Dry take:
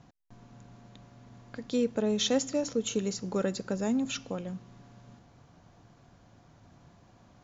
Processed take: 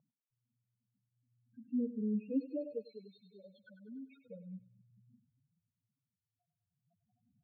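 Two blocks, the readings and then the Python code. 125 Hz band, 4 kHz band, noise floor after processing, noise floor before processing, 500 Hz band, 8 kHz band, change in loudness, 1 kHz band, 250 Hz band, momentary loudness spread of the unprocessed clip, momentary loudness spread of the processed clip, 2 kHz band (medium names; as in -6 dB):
-11.5 dB, under -30 dB, under -85 dBFS, -60 dBFS, -14.0 dB, no reading, -9.0 dB, under -40 dB, -7.5 dB, 13 LU, 23 LU, under -20 dB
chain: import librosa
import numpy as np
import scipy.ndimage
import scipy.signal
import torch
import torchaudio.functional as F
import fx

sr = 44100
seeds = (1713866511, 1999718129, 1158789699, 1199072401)

p1 = fx.freq_compress(x, sr, knee_hz=1600.0, ratio=1.5)
p2 = fx.clip_asym(p1, sr, top_db=-32.0, bottom_db=-18.5)
p3 = p1 + (p2 * 10.0 ** (-8.0 / 20.0))
p4 = fx.spec_topn(p3, sr, count=2)
p5 = p4 + fx.echo_thinned(p4, sr, ms=99, feedback_pct=60, hz=710.0, wet_db=-8.5, dry=0)
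p6 = fx.wah_lfo(p5, sr, hz=0.36, low_hz=230.0, high_hz=1800.0, q=2.2)
y = p6 * 10.0 ** (-2.5 / 20.0)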